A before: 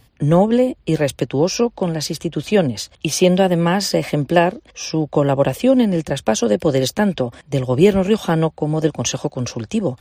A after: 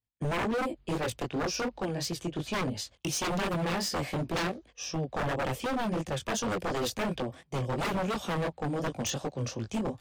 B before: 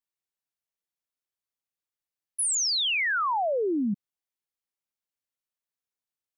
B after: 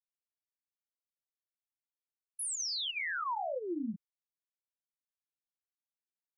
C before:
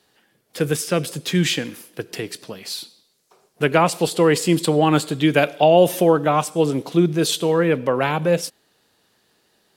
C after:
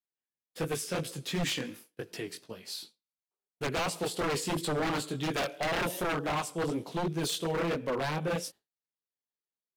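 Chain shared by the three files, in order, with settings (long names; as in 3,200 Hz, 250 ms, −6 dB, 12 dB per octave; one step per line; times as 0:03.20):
chorus effect 2.8 Hz, delay 17.5 ms, depth 5.8 ms
downward expander −37 dBFS
wave folding −18 dBFS
level −7 dB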